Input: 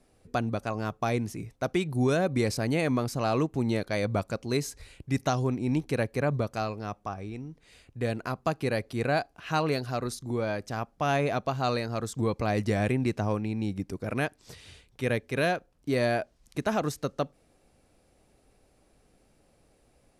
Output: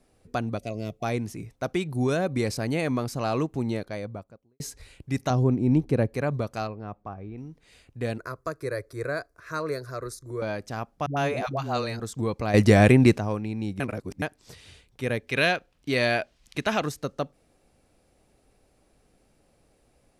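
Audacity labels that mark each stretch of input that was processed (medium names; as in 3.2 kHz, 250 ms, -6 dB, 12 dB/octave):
0.580000	1.040000	time-frequency box 730–1900 Hz -17 dB
3.480000	4.600000	studio fade out
5.300000	6.140000	tilt shelf lows +7 dB, about 940 Hz
6.670000	7.380000	tape spacing loss at 10 kHz 37 dB
8.180000	10.420000	static phaser centre 800 Hz, stages 6
11.060000	12.000000	phase dispersion highs, late by 108 ms, half as late at 400 Hz
12.540000	13.180000	gain +10.5 dB
13.800000	14.220000	reverse
15.270000	16.860000	peaking EQ 2.9 kHz +10.5 dB 1.9 oct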